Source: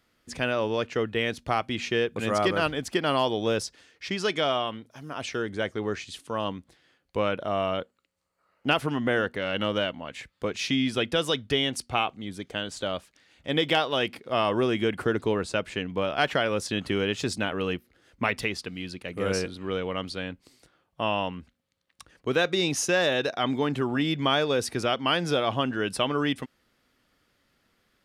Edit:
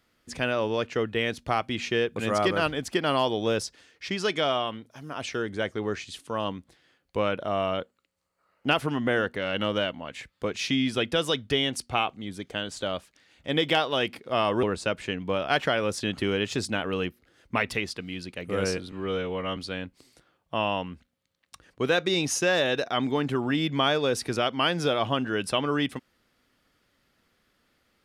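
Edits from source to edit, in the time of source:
14.63–15.31 cut
19.6–20.03 stretch 1.5×

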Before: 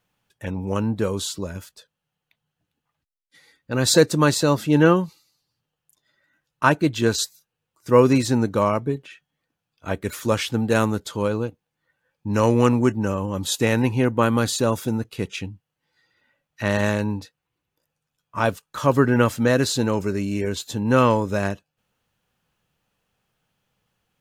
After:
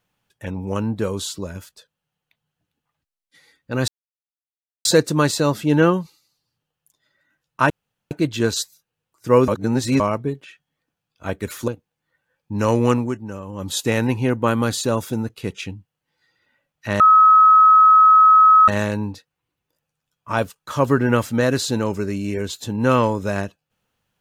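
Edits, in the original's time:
3.88 insert silence 0.97 s
6.73 insert room tone 0.41 s
8.1–8.62 reverse
10.3–11.43 cut
12.66–13.46 dip -8.5 dB, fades 0.24 s
16.75 add tone 1280 Hz -7.5 dBFS 1.68 s

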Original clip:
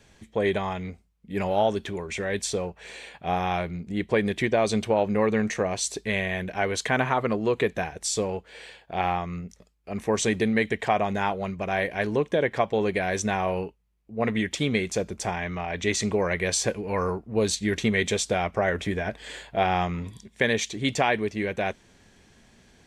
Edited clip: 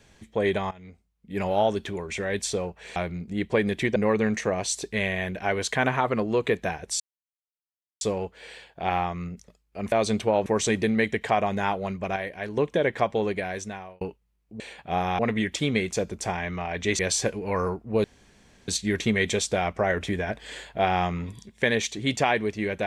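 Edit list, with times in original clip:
0.71–1.47 fade in, from -19 dB
2.96–3.55 move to 14.18
4.55–5.09 move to 10.04
8.13 insert silence 1.01 s
11.74–12.15 gain -6.5 dB
12.68–13.59 fade out
15.98–16.41 cut
17.46 insert room tone 0.64 s

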